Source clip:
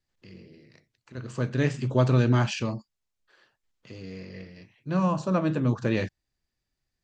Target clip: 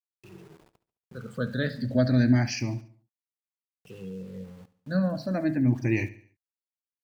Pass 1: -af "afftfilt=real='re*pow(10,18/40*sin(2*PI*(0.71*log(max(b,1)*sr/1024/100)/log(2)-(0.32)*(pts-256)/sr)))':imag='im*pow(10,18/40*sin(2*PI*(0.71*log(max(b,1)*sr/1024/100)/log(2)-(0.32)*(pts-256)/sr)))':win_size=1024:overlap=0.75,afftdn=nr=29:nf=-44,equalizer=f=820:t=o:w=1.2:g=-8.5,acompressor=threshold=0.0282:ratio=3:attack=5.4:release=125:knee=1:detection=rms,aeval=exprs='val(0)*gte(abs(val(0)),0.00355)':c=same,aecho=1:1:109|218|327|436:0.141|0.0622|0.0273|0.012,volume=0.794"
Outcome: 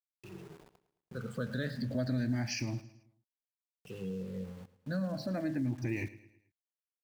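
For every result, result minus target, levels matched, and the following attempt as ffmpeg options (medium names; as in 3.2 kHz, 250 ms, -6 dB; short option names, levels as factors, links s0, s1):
compression: peak gain reduction +13.5 dB; echo 38 ms late
-af "afftfilt=real='re*pow(10,18/40*sin(2*PI*(0.71*log(max(b,1)*sr/1024/100)/log(2)-(0.32)*(pts-256)/sr)))':imag='im*pow(10,18/40*sin(2*PI*(0.71*log(max(b,1)*sr/1024/100)/log(2)-(0.32)*(pts-256)/sr)))':win_size=1024:overlap=0.75,afftdn=nr=29:nf=-44,equalizer=f=820:t=o:w=1.2:g=-8.5,aeval=exprs='val(0)*gte(abs(val(0)),0.00355)':c=same,aecho=1:1:109|218|327|436:0.141|0.0622|0.0273|0.012,volume=0.794"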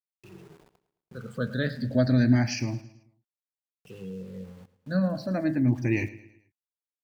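echo 38 ms late
-af "afftfilt=real='re*pow(10,18/40*sin(2*PI*(0.71*log(max(b,1)*sr/1024/100)/log(2)-(0.32)*(pts-256)/sr)))':imag='im*pow(10,18/40*sin(2*PI*(0.71*log(max(b,1)*sr/1024/100)/log(2)-(0.32)*(pts-256)/sr)))':win_size=1024:overlap=0.75,afftdn=nr=29:nf=-44,equalizer=f=820:t=o:w=1.2:g=-8.5,aeval=exprs='val(0)*gte(abs(val(0)),0.00355)':c=same,aecho=1:1:71|142|213|284:0.141|0.0622|0.0273|0.012,volume=0.794"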